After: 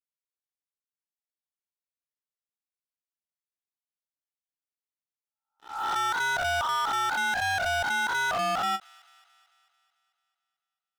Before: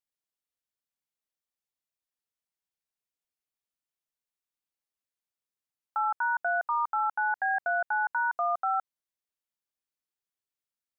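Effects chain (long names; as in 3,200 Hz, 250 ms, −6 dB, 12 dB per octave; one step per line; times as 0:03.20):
peak hold with a rise ahead of every peak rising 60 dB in 0.58 s
treble cut that deepens with the level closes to 1,700 Hz
dynamic equaliser 900 Hz, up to −5 dB, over −40 dBFS, Q 1.9
leveller curve on the samples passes 5
delay with a high-pass on its return 221 ms, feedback 60%, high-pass 1,700 Hz, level −22.5 dB
every ending faded ahead of time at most 460 dB per second
level −3.5 dB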